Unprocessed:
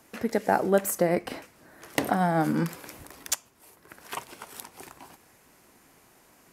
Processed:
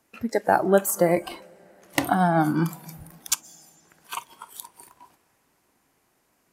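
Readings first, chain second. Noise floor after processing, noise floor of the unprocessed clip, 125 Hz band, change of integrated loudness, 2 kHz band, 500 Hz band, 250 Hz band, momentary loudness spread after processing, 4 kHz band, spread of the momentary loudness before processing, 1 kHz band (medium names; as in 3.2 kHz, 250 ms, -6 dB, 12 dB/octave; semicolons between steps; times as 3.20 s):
-69 dBFS, -60 dBFS, +4.0 dB, +3.5 dB, +3.0 dB, +3.5 dB, +3.0 dB, 21 LU, +3.5 dB, 20 LU, +4.0 dB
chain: algorithmic reverb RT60 4.2 s, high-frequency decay 0.85×, pre-delay 90 ms, DRR 14 dB; spectral noise reduction 14 dB; trim +4 dB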